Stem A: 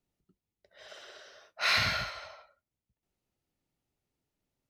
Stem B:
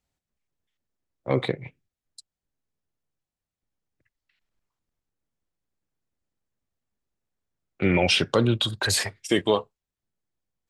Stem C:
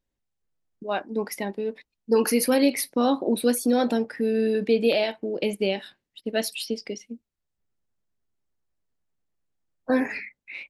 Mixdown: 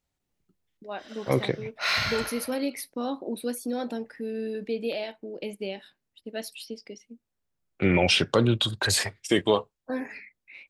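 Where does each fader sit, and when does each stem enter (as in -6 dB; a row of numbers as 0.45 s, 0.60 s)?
+1.0 dB, -0.5 dB, -9.0 dB; 0.20 s, 0.00 s, 0.00 s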